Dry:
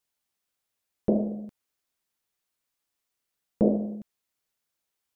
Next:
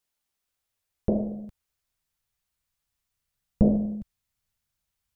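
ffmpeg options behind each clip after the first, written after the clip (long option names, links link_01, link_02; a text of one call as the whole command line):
ffmpeg -i in.wav -af "asubboost=boost=11.5:cutoff=110" out.wav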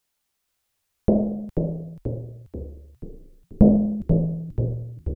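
ffmpeg -i in.wav -filter_complex "[0:a]asplit=9[link_01][link_02][link_03][link_04][link_05][link_06][link_07][link_08][link_09];[link_02]adelay=485,afreqshift=-46,volume=-5.5dB[link_10];[link_03]adelay=970,afreqshift=-92,volume=-9.9dB[link_11];[link_04]adelay=1455,afreqshift=-138,volume=-14.4dB[link_12];[link_05]adelay=1940,afreqshift=-184,volume=-18.8dB[link_13];[link_06]adelay=2425,afreqshift=-230,volume=-23.2dB[link_14];[link_07]adelay=2910,afreqshift=-276,volume=-27.7dB[link_15];[link_08]adelay=3395,afreqshift=-322,volume=-32.1dB[link_16];[link_09]adelay=3880,afreqshift=-368,volume=-36.6dB[link_17];[link_01][link_10][link_11][link_12][link_13][link_14][link_15][link_16][link_17]amix=inputs=9:normalize=0,volume=6dB" out.wav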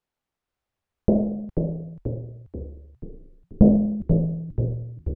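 ffmpeg -i in.wav -af "lowpass=frequency=1000:poles=1" out.wav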